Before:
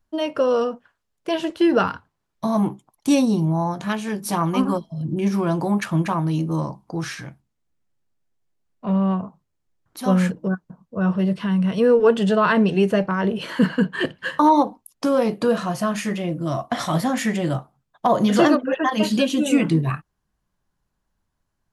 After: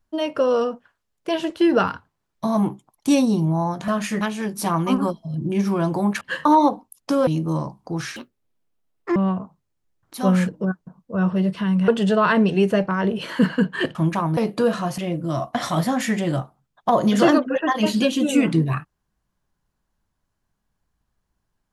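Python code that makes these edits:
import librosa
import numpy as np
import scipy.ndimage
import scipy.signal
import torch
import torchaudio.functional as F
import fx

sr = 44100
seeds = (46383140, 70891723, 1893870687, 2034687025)

y = fx.edit(x, sr, fx.swap(start_s=5.88, length_s=0.42, other_s=14.15, other_length_s=1.06),
    fx.speed_span(start_s=7.19, length_s=1.8, speed=1.8),
    fx.cut(start_s=11.71, length_s=0.37),
    fx.move(start_s=15.82, length_s=0.33, to_s=3.88), tone=tone)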